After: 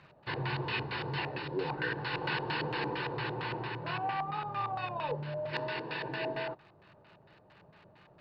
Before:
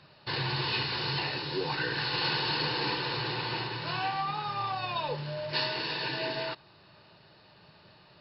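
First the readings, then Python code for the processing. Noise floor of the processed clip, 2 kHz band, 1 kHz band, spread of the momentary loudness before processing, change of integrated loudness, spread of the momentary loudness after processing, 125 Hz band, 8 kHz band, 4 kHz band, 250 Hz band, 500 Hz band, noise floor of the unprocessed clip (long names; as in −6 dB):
−61 dBFS, −3.0 dB, −2.5 dB, 5 LU, −4.5 dB, 4 LU, −2.0 dB, can't be measured, −11.0 dB, −1.5 dB, −1.0 dB, −58 dBFS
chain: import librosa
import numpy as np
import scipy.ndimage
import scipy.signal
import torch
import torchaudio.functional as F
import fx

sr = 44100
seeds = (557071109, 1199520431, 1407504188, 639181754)

y = fx.dmg_crackle(x, sr, seeds[0], per_s=180.0, level_db=-43.0)
y = fx.filter_lfo_lowpass(y, sr, shape='square', hz=4.4, low_hz=700.0, high_hz=2300.0, q=1.2)
y = y * 10.0 ** (-2.0 / 20.0)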